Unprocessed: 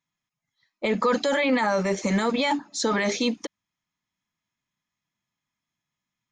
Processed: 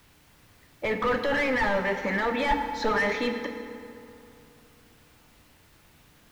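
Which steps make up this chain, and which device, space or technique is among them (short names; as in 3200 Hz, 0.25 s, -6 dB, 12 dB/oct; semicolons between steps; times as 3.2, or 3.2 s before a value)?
drive-through speaker (BPF 500–3900 Hz; bell 1800 Hz +8 dB 0.34 oct; hard clip -23.5 dBFS, distortion -9 dB; white noise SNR 22 dB); tone controls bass +13 dB, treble -11 dB; 2.48–2.89 comb 4.8 ms, depth 81%; FDN reverb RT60 2.7 s, high-frequency decay 0.6×, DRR 5 dB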